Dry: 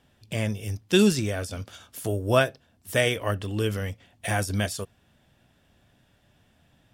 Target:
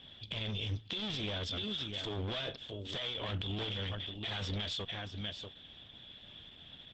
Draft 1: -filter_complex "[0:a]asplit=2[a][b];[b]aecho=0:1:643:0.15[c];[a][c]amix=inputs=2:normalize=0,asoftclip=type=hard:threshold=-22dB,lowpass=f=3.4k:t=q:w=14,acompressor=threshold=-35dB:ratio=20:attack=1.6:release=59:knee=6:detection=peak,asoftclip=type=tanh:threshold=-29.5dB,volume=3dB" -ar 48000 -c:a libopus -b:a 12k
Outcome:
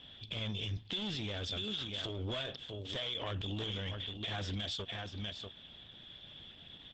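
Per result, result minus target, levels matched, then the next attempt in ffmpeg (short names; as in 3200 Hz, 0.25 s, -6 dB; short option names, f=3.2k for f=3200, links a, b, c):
soft clip: distortion +22 dB; hard clip: distortion -5 dB
-filter_complex "[0:a]asplit=2[a][b];[b]aecho=0:1:643:0.15[c];[a][c]amix=inputs=2:normalize=0,asoftclip=type=hard:threshold=-22dB,lowpass=f=3.4k:t=q:w=14,acompressor=threshold=-35dB:ratio=20:attack=1.6:release=59:knee=6:detection=peak,asoftclip=type=tanh:threshold=-18dB,volume=3dB" -ar 48000 -c:a libopus -b:a 12k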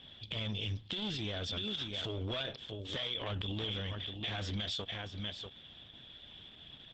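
hard clip: distortion -5 dB
-filter_complex "[0:a]asplit=2[a][b];[b]aecho=0:1:643:0.15[c];[a][c]amix=inputs=2:normalize=0,asoftclip=type=hard:threshold=-30dB,lowpass=f=3.4k:t=q:w=14,acompressor=threshold=-35dB:ratio=20:attack=1.6:release=59:knee=6:detection=peak,asoftclip=type=tanh:threshold=-18dB,volume=3dB" -ar 48000 -c:a libopus -b:a 12k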